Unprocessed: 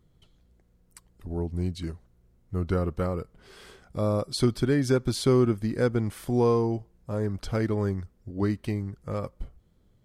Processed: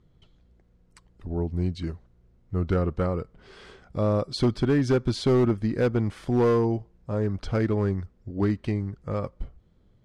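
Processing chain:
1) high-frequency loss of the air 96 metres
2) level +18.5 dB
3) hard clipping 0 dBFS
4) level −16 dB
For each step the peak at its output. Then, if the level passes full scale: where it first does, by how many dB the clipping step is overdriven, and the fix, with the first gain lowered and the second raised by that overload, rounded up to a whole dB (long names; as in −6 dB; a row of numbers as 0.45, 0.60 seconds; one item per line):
−9.5, +9.0, 0.0, −16.0 dBFS
step 2, 9.0 dB
step 2 +9.5 dB, step 4 −7 dB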